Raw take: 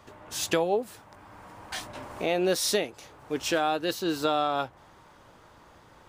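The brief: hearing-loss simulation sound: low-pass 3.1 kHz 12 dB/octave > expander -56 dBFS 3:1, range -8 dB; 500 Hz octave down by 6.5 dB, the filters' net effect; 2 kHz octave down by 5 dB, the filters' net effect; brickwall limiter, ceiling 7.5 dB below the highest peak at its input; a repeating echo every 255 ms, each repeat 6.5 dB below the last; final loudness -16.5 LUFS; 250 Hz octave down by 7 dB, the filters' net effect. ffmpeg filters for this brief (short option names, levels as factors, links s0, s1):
-af "equalizer=f=250:t=o:g=-8,equalizer=f=500:t=o:g=-5.5,equalizer=f=2000:t=o:g=-5.5,alimiter=limit=0.0631:level=0:latency=1,lowpass=3100,aecho=1:1:255|510|765|1020|1275|1530:0.473|0.222|0.105|0.0491|0.0231|0.0109,agate=range=0.398:threshold=0.00158:ratio=3,volume=10.6"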